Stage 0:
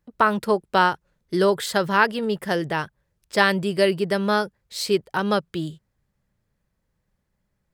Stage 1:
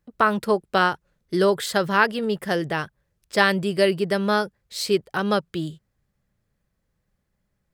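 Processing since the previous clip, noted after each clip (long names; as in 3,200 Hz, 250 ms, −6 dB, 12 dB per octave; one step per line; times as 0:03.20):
notch filter 930 Hz, Q 13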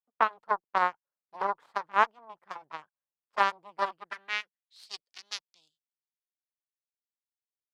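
harmonic generator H 2 −8 dB, 6 −20 dB, 7 −16 dB, 8 −28 dB, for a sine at −1.5 dBFS
band-pass filter sweep 990 Hz → 5,000 Hz, 0:03.78–0:04.93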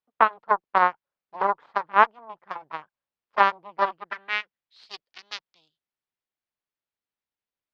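high-frequency loss of the air 210 metres
level +7.5 dB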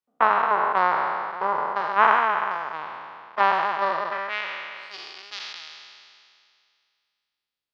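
peak hold with a decay on every bin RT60 2.33 s
level −4 dB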